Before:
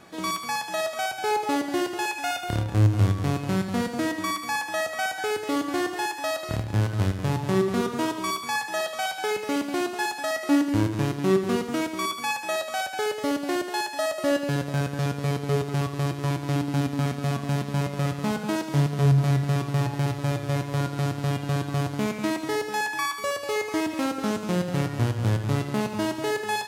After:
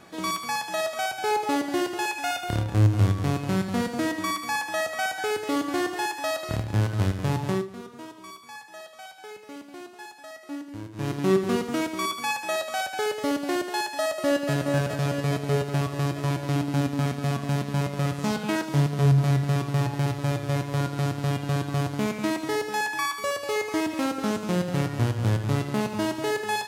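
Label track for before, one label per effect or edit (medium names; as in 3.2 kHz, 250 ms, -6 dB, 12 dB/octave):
7.470000	11.140000	dip -15 dB, fades 0.21 s
14.050000	14.510000	echo throw 420 ms, feedback 70%, level -5.5 dB
18.120000	18.640000	peaking EQ 11 kHz -> 1.4 kHz +6 dB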